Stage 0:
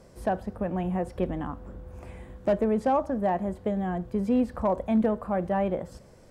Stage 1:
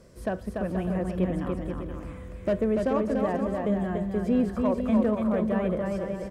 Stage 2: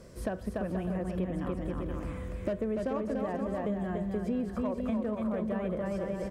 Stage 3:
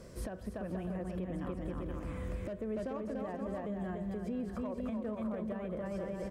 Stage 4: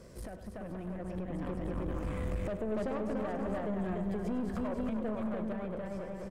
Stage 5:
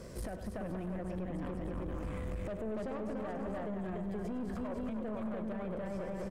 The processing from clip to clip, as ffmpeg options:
-filter_complex "[0:a]equalizer=f=810:t=o:w=0.36:g=-11.5,asplit=2[s0][s1];[s1]aecho=0:1:290|478.5|601|680.7|732.4:0.631|0.398|0.251|0.158|0.1[s2];[s0][s2]amix=inputs=2:normalize=0"
-af "acompressor=threshold=0.0224:ratio=4,volume=1.33"
-af "alimiter=level_in=1.88:limit=0.0631:level=0:latency=1:release=307,volume=0.531"
-af "aeval=exprs='(tanh(70.8*val(0)+0.4)-tanh(0.4))/70.8':c=same,dynaudnorm=f=390:g=7:m=2.24,aecho=1:1:101:0.237"
-af "alimiter=level_in=4.22:limit=0.0631:level=0:latency=1:release=118,volume=0.237,volume=1.78"

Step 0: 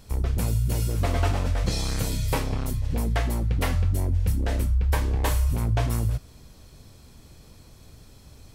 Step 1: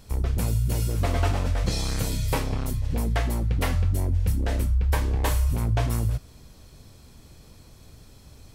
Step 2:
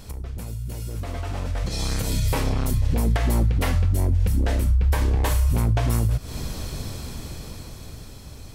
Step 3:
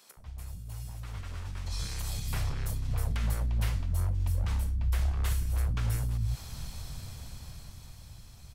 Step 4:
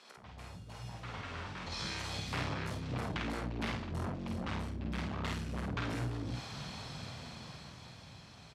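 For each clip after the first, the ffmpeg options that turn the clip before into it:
-af anull
-af "acompressor=threshold=0.0316:ratio=6,alimiter=level_in=2.51:limit=0.0631:level=0:latency=1:release=239,volume=0.398,dynaudnorm=f=390:g=9:m=3.76,volume=2.37"
-filter_complex "[0:a]acrossover=split=230|1900[s0][s1][s2];[s1]aeval=exprs='abs(val(0))':c=same[s3];[s0][s3][s2]amix=inputs=3:normalize=0,acrossover=split=300[s4][s5];[s4]adelay=170[s6];[s6][s5]amix=inputs=2:normalize=0,volume=0.376"
-filter_complex "[0:a]asoftclip=type=hard:threshold=0.0376,highpass=190,lowpass=3800,asplit=2[s0][s1];[s1]adelay=49,volume=0.708[s2];[s0][s2]amix=inputs=2:normalize=0,volume=1.68"

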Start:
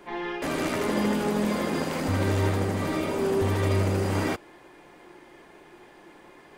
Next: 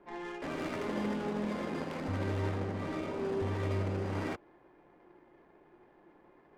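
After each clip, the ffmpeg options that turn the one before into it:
-af "adynamicsmooth=sensitivity=7:basefreq=1300,volume=0.355"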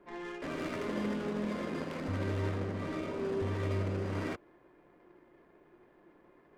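-af "equalizer=f=820:t=o:w=0.22:g=-8"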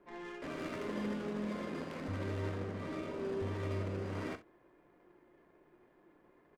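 -af "aecho=1:1:39|66:0.224|0.168,volume=0.631"

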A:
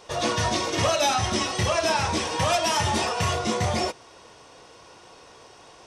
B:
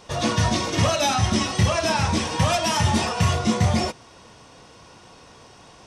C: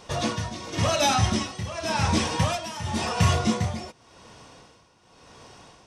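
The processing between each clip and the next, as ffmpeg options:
-af "lowshelf=f=290:t=q:w=1.5:g=6,volume=1.12"
-af "tremolo=f=0.91:d=0.79"

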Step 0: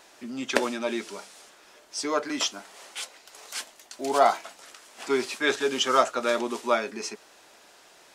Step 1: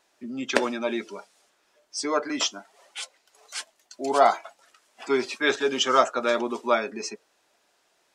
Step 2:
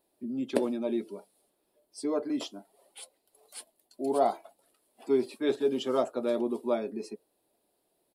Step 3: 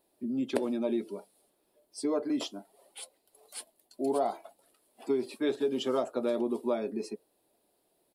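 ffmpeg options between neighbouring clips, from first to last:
-af "afftdn=nr=15:nf=-41,volume=1.19"
-af "firequalizer=gain_entry='entry(320,0);entry(1400,-20);entry(4300,-11);entry(6100,-23);entry(9900,2)':delay=0.05:min_phase=1"
-af "acompressor=threshold=0.0447:ratio=6,volume=1.26"

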